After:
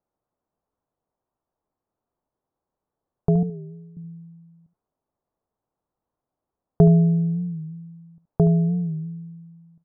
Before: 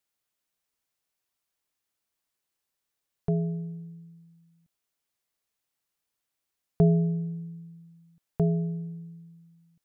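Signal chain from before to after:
low-pass filter 1,000 Hz 24 dB per octave
in parallel at −1.5 dB: downward compressor, threshold −32 dBFS, peak gain reduction 15 dB
0:03.43–0:03.97: on the sum: phaser with its sweep stopped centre 730 Hz, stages 6
on a send: single-tap delay 73 ms −13.5 dB
on the sum: wow of a warped record 45 rpm, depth 100 cents
level +5 dB

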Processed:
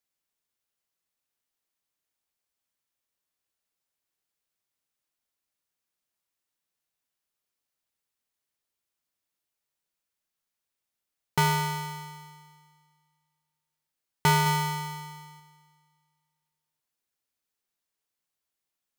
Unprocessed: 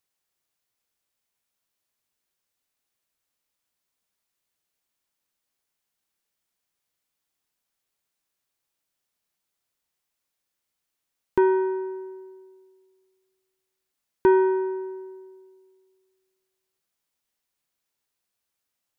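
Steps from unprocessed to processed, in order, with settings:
0:14.46–0:15.40: low-shelf EQ 500 Hz +4 dB
ring modulator with a square carrier 530 Hz
level −4.5 dB

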